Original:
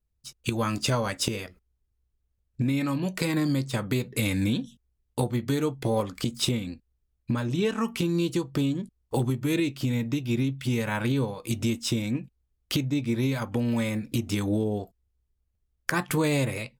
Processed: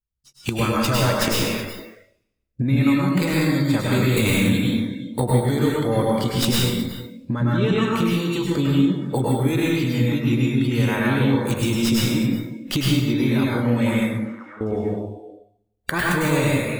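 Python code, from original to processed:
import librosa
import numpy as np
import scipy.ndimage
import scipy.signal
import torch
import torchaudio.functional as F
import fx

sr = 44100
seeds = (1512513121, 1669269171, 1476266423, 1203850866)

y = fx.tracing_dist(x, sr, depth_ms=0.092)
y = y + 10.0 ** (-15.0 / 20.0) * np.pad(y, (int(367 * sr / 1000.0), 0))[:len(y)]
y = fx.rider(y, sr, range_db=3, speed_s=0.5)
y = fx.bandpass_q(y, sr, hz=1300.0, q=4.3, at=(14.12, 14.61))
y = fx.rev_plate(y, sr, seeds[0], rt60_s=1.0, hf_ratio=0.9, predelay_ms=90, drr_db=-4.5)
y = fx.noise_reduce_blind(y, sr, reduce_db=14)
y = fx.env_flatten(y, sr, amount_pct=70, at=(3.92, 4.49))
y = y * librosa.db_to_amplitude(2.5)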